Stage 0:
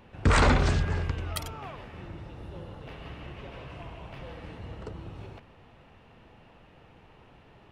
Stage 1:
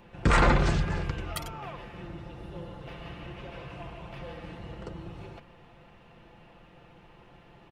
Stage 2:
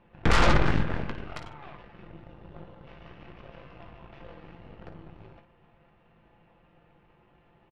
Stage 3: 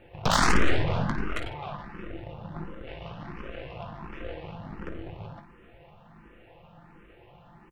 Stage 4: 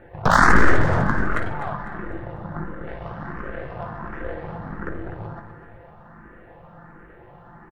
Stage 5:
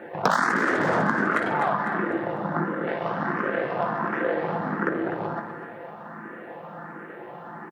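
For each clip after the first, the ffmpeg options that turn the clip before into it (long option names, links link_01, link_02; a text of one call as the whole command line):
ffmpeg -i in.wav -filter_complex "[0:a]aecho=1:1:5.8:0.48,acrossover=split=2800[link_01][link_02];[link_02]alimiter=limit=-24dB:level=0:latency=1:release=494[link_03];[link_01][link_03]amix=inputs=2:normalize=0" out.wav
ffmpeg -i in.wav -af "lowpass=2700,aeval=exprs='0.316*(cos(1*acos(clip(val(0)/0.316,-1,1)))-cos(1*PI/2))+0.0224*(cos(7*acos(clip(val(0)/0.316,-1,1)))-cos(7*PI/2))+0.0708*(cos(8*acos(clip(val(0)/0.316,-1,1)))-cos(8*PI/2))':channel_layout=same,aecho=1:1:19|55:0.335|0.282,volume=-2dB" out.wav
ffmpeg -i in.wav -filter_complex "[0:a]asplit=2[link_01][link_02];[link_02]aeval=exprs='0.376*sin(PI/2*4.47*val(0)/0.376)':channel_layout=same,volume=-8.5dB[link_03];[link_01][link_03]amix=inputs=2:normalize=0,asplit=2[link_04][link_05];[link_05]afreqshift=1.4[link_06];[link_04][link_06]amix=inputs=2:normalize=1" out.wav
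ffmpeg -i in.wav -filter_complex "[0:a]highshelf=frequency=2100:width_type=q:width=3:gain=-7.5,asplit=2[link_01][link_02];[link_02]aecho=0:1:250|500|750|1000:0.282|0.116|0.0474|0.0194[link_03];[link_01][link_03]amix=inputs=2:normalize=0,volume=6dB" out.wav
ffmpeg -i in.wav -af "highpass=frequency=190:width=0.5412,highpass=frequency=190:width=1.3066,acompressor=threshold=-27dB:ratio=12,volume=8.5dB" out.wav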